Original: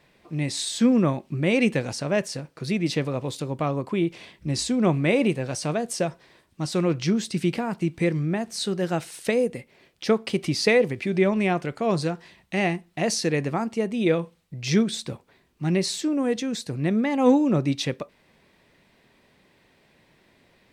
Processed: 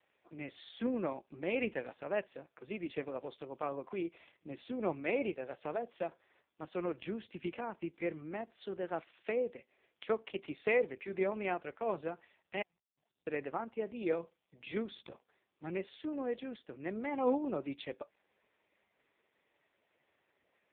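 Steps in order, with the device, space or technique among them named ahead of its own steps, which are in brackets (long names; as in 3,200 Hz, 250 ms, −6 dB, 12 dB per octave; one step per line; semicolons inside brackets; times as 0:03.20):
0:12.62–0:13.27: inverse Chebyshev band-stop filter 190–3,300 Hz, stop band 50 dB
telephone (band-pass filter 370–3,400 Hz; level −9 dB; AMR narrowband 4.75 kbit/s 8,000 Hz)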